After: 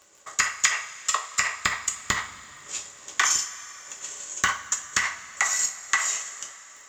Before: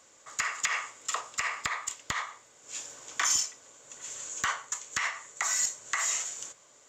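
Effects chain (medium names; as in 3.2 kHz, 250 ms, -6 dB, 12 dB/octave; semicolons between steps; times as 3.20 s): crackle 29 per s -41 dBFS; transient shaper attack +8 dB, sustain -10 dB; two-slope reverb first 0.33 s, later 3.9 s, from -19 dB, DRR 3 dB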